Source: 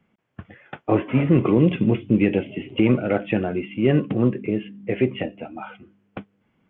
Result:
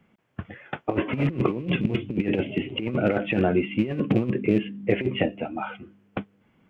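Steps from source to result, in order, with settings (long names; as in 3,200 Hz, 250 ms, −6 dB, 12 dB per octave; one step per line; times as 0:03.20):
loose part that buzzes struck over −22 dBFS, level −30 dBFS
compressor whose output falls as the input rises −22 dBFS, ratio −0.5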